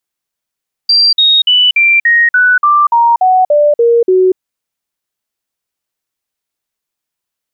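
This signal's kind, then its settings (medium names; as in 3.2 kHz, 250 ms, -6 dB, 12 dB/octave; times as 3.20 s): stepped sine 4.72 kHz down, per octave 3, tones 12, 0.24 s, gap 0.05 s -5 dBFS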